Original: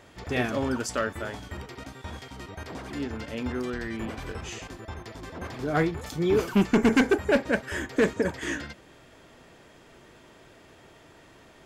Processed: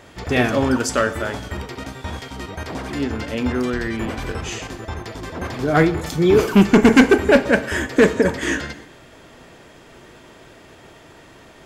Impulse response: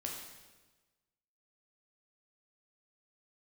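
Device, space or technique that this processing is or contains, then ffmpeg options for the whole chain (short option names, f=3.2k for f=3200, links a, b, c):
keyed gated reverb: -filter_complex "[0:a]asplit=3[a][b][c];[1:a]atrim=start_sample=2205[d];[b][d]afir=irnorm=-1:irlink=0[e];[c]apad=whole_len=514151[f];[e][f]sidechaingate=range=-33dB:threshold=-51dB:ratio=16:detection=peak,volume=-8.5dB[g];[a][g]amix=inputs=2:normalize=0,volume=7dB"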